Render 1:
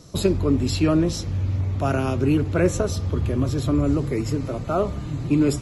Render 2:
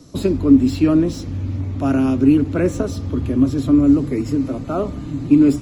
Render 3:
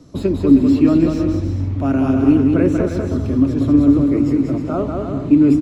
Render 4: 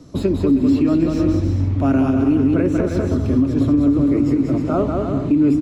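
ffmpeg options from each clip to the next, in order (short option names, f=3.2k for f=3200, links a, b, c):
-filter_complex "[0:a]equalizer=f=270:t=o:w=0.43:g=13.5,acrossover=split=240|3100[a][b][c];[c]asoftclip=type=tanh:threshold=-34dB[d];[a][b][d]amix=inputs=3:normalize=0,volume=-1dB"
-filter_complex "[0:a]highshelf=f=4k:g=-10,asplit=2[a][b];[b]aecho=0:1:190|313.5|393.8|446|479.9:0.631|0.398|0.251|0.158|0.1[c];[a][c]amix=inputs=2:normalize=0"
-af "alimiter=limit=-10dB:level=0:latency=1:release=184,volume=2dB"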